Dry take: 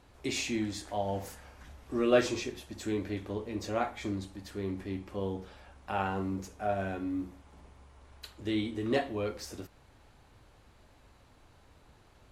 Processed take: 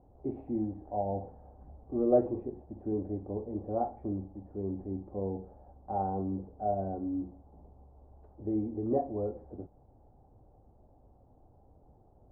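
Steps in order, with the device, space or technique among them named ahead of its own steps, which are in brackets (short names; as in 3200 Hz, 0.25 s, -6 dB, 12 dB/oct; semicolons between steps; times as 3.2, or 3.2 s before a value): under water (LPF 700 Hz 24 dB/oct; bell 780 Hz +8.5 dB 0.28 oct)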